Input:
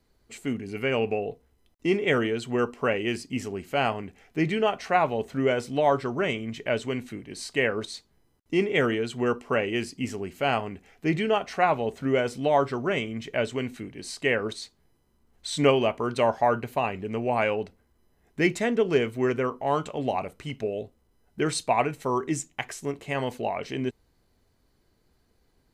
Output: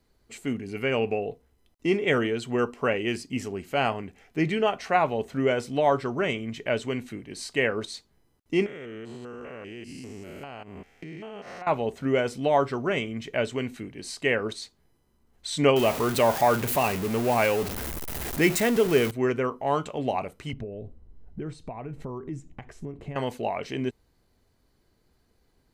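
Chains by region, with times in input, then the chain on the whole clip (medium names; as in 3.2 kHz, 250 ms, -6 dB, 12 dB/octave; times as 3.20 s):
8.66–11.67 s: spectrogram pixelated in time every 200 ms + compression 10:1, threshold -36 dBFS
15.76–19.11 s: jump at every zero crossing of -28.5 dBFS + treble shelf 9.9 kHz +12 dB
20.53–23.16 s: compression 3:1, threshold -43 dBFS + tilt EQ -4 dB/octave
whole clip: none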